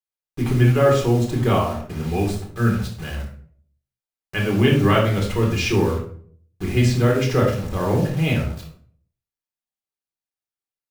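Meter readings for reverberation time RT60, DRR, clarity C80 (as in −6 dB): 0.50 s, −2.0 dB, 9.0 dB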